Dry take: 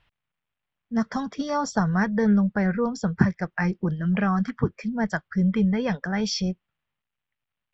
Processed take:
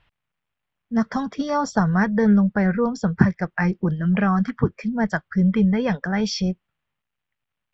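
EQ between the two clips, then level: treble shelf 5.8 kHz -7.5 dB; +3.5 dB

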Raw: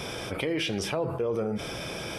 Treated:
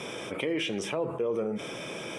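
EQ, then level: cabinet simulation 190–9500 Hz, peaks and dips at 750 Hz -5 dB, 1.5 kHz -5 dB, 4.3 kHz -7 dB; peaking EQ 4.9 kHz -8.5 dB 0.36 oct; 0.0 dB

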